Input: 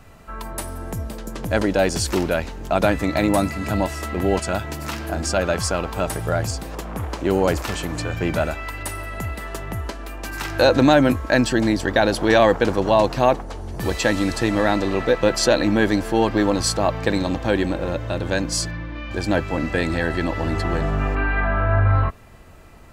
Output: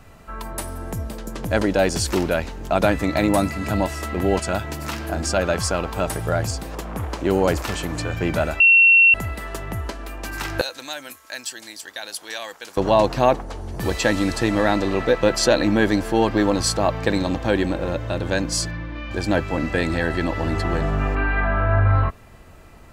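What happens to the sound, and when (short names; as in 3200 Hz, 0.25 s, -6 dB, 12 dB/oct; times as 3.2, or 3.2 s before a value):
8.6–9.14 bleep 2720 Hz -9 dBFS
10.61–12.77 differentiator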